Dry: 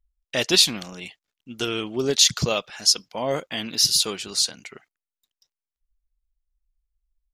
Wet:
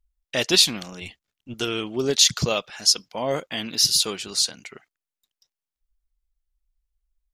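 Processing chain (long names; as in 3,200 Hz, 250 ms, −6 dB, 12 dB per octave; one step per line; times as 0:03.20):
0:01.01–0:01.54: sub-octave generator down 1 octave, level +1 dB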